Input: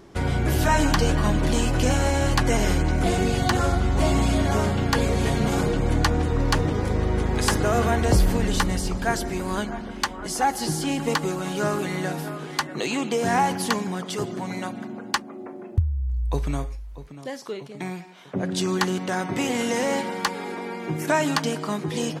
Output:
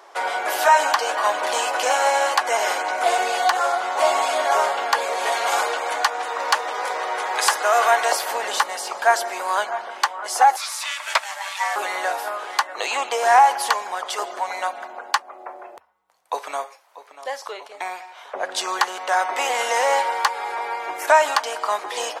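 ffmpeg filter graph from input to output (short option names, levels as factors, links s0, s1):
-filter_complex "[0:a]asettb=1/sr,asplit=3[s0][s1][s2];[s0]atrim=end=5.324[s3];[s1]atrim=start=5.32:end=8.31,asetpts=PTS-STARTPTS,afade=t=in:d=0.004:c=qsin,afade=t=out:st=2.986:d=0.004:c=qsin,highpass=170,tiltshelf=f=900:g=-3.5[s4];[s2]atrim=start=8.306[s5];[s3][s4]acrossfade=d=0.004:c1=hsin:c2=qsin[s6];[s6][s5]acrossfade=d=0.004:c1=qsin:c2=hsin,asettb=1/sr,asplit=3[s7][s8][s9];[s7]atrim=end=10.564[s10];[s8]atrim=start=10.56:end=11.76,asetpts=PTS-STARTPTS,afade=t=in:d=0.004:c=qsin,afade=t=out:st=1.196:d=0.004:c=qsin,highpass=f=1300:w=0.5412,highpass=f=1300:w=1.3066,equalizer=f=1700:w=0.31:g=5,aeval=exprs='val(0)*sin(2*PI*510*n/s)':c=same[s11];[s9]atrim=start=11.756[s12];[s10][s11]acrossfade=d=0.004:c1=hsin:c2=qsin[s13];[s13][s12]acrossfade=d=0.004:c1=qsin:c2=hsin,highpass=f=580:w=0.5412,highpass=f=580:w=1.3066,equalizer=f=890:t=o:w=1.8:g=7.5,alimiter=limit=0.398:level=0:latency=1:release=373,volume=1.5"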